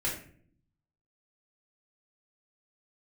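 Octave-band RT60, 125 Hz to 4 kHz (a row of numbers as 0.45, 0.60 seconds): 1.1, 0.95, 0.65, 0.45, 0.45, 0.35 seconds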